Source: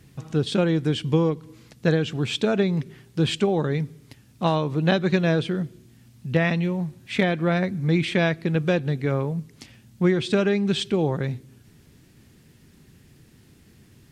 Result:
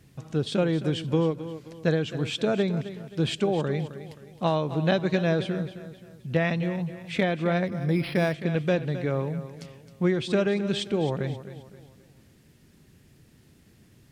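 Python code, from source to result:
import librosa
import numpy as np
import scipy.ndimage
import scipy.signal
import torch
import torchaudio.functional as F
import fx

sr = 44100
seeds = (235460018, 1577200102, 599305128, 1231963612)

y = fx.peak_eq(x, sr, hz=600.0, db=4.0, octaves=0.47)
y = fx.echo_feedback(y, sr, ms=264, feedback_pct=39, wet_db=-13)
y = fx.resample_linear(y, sr, factor=6, at=(7.67, 8.34))
y = y * librosa.db_to_amplitude(-4.0)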